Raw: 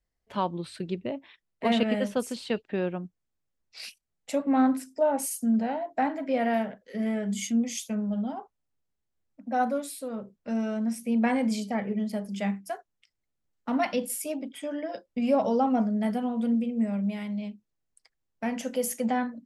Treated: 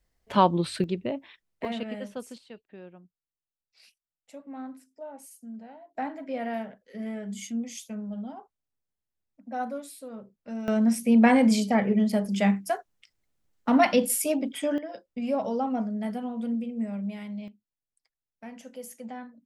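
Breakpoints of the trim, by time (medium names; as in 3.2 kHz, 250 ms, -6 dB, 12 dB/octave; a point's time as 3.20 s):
+8.5 dB
from 0.84 s +2 dB
from 1.65 s -9 dB
from 2.38 s -17 dB
from 5.95 s -6 dB
from 10.68 s +6.5 dB
from 14.78 s -4 dB
from 17.48 s -12.5 dB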